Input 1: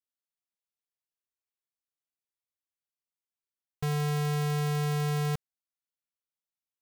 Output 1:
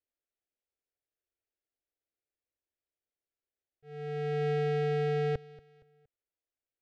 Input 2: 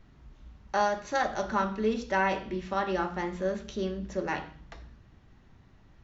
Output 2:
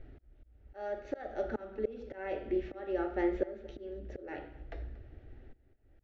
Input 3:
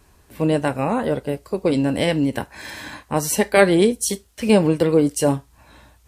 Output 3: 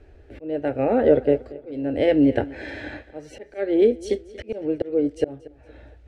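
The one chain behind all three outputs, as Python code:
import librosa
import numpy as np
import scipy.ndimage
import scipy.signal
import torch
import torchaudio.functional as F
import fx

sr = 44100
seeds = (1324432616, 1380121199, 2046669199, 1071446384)

y = scipy.signal.sosfilt(scipy.signal.butter(2, 1600.0, 'lowpass', fs=sr, output='sos'), x)
y = fx.auto_swell(y, sr, attack_ms=662.0)
y = fx.fixed_phaser(y, sr, hz=430.0, stages=4)
y = fx.echo_feedback(y, sr, ms=233, feedback_pct=37, wet_db=-20)
y = y * librosa.db_to_amplitude(8.0)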